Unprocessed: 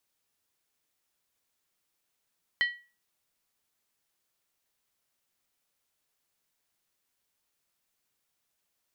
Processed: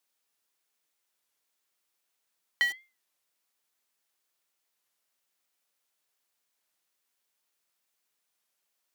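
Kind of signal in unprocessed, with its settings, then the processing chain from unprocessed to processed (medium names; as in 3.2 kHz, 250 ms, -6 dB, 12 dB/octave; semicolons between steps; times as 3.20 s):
skin hit, lowest mode 1.93 kHz, decay 0.34 s, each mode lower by 8 dB, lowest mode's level -20 dB
high-pass 380 Hz 6 dB/octave; in parallel at -10.5 dB: companded quantiser 2-bit; on the sum: warped record 33 1/3 rpm, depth 160 cents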